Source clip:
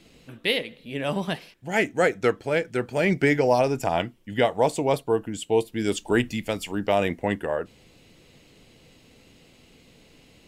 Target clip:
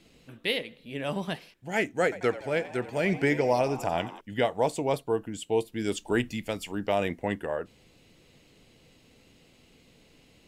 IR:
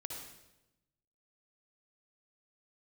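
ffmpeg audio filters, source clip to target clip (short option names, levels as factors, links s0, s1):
-filter_complex "[0:a]asettb=1/sr,asplit=3[s0][s1][s2];[s0]atrim=end=2.034[s3];[s1]atrim=start=2.03:end=4.21,asetpts=PTS-STARTPTS,afade=t=in:d=0.004:c=qsin,afade=t=out:st=2.176:d=0.004:c=qsin,asplit=8[s4][s5][s6][s7][s8][s9][s10][s11];[s5]adelay=89,afreqshift=83,volume=0.168[s12];[s6]adelay=178,afreqshift=166,volume=0.106[s13];[s7]adelay=267,afreqshift=249,volume=0.0668[s14];[s8]adelay=356,afreqshift=332,volume=0.0422[s15];[s9]adelay=445,afreqshift=415,volume=0.0263[s16];[s10]adelay=534,afreqshift=498,volume=0.0166[s17];[s11]adelay=623,afreqshift=581,volume=0.0105[s18];[s4][s12][s13][s14][s15][s16][s17][s18]amix=inputs=8:normalize=0,atrim=end_sample=96138[s19];[s2]atrim=start=4.206[s20];[s3][s19]acrossfade=d=0.004:c1=hsin:c2=qsin[s21];[s21][s20]acrossfade=d=0.004:c1=qsin:c2=hsin,volume=0.596"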